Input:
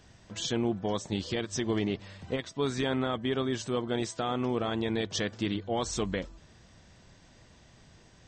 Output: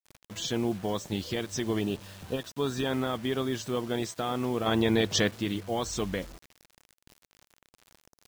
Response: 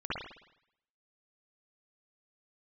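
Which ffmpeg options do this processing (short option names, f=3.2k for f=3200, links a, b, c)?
-filter_complex "[0:a]asettb=1/sr,asplit=3[a][b][c];[a]atrim=end=1.814[d];[b]atrim=start=1.81:end=2.87,asetpts=PTS-STARTPTS,afade=t=in:d=0.004:c=qsin,afade=t=out:st=1.056:d=0.004:c=qsin,asuperstop=centerf=2100:order=12:qfactor=4.1[e];[c]atrim=start=2.866[f];[d][e]acrossfade=d=0.004:c1=hsin:c2=qsin[g];[g][f]acrossfade=d=0.004:c1=qsin:c2=hsin,asettb=1/sr,asplit=3[h][i][j];[h]atrim=end=4.664[k];[i]atrim=start=4.66:end=5.31,asetpts=PTS-STARTPTS,afade=t=in:d=0.004:c=qsin,afade=t=out:st=0.646:d=0.004:c=qsin,acontrast=53[l];[j]atrim=start=5.306[m];[k][l]acrossfade=d=0.004:c1=hsin:c2=qsin[n];[n][m]acrossfade=d=0.004:c1=qsin:c2=hsin,acrusher=bits=7:mix=0:aa=0.000001"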